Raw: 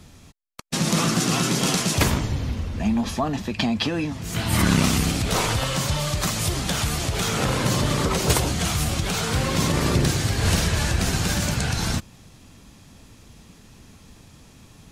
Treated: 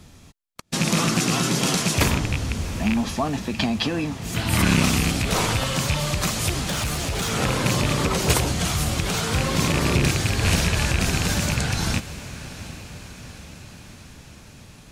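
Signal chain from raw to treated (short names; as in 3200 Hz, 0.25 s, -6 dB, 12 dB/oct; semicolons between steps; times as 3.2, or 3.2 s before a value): rattling part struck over -19 dBFS, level -13 dBFS; 6.65–7.31 hard clip -21.5 dBFS, distortion -25 dB; diffused feedback echo 0.756 s, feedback 60%, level -15 dB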